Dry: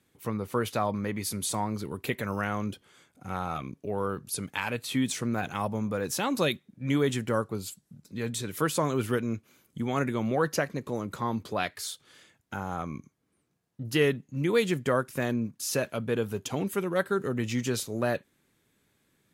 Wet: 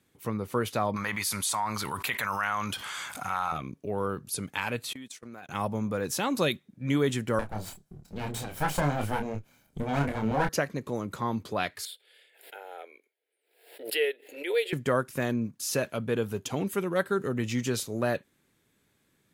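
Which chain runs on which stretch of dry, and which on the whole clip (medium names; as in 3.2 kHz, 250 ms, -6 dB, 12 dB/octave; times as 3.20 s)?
0.96–3.52 s: resonant low shelf 630 Hz -14 dB, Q 1.5 + level flattener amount 70%
4.93–5.49 s: high-pass 370 Hz 6 dB/octave + gate -35 dBFS, range -29 dB + compression, threshold -40 dBFS
7.39–10.49 s: comb filter that takes the minimum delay 1.3 ms + tilt shelf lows +3 dB, about 1.4 kHz + doubling 28 ms -5.5 dB
11.85–14.73 s: elliptic high-pass 430 Hz, stop band 60 dB + static phaser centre 2.7 kHz, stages 4 + swell ahead of each attack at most 97 dB/s
whole clip: none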